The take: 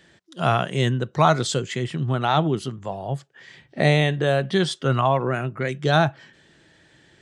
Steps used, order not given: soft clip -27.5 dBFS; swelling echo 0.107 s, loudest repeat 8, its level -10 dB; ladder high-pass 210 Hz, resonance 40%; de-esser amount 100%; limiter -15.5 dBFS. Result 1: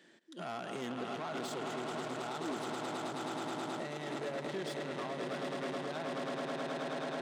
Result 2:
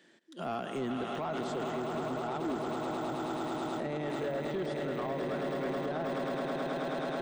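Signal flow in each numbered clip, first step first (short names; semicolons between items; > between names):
swelling echo > limiter > soft clip > ladder high-pass > de-esser; swelling echo > de-esser > limiter > ladder high-pass > soft clip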